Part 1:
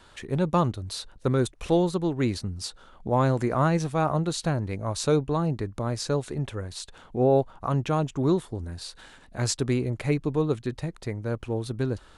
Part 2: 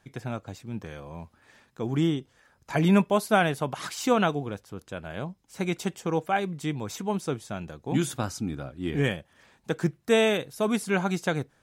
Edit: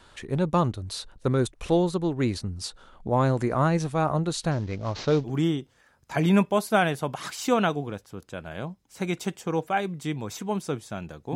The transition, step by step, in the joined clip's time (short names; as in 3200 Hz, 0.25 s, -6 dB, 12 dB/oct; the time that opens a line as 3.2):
part 1
4.51–5.31 CVSD 32 kbps
5.27 switch to part 2 from 1.86 s, crossfade 0.08 s